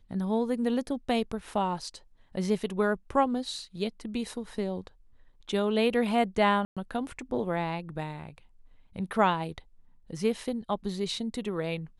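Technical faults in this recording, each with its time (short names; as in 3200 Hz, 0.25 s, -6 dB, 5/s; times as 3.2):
6.65–6.77 gap 0.116 s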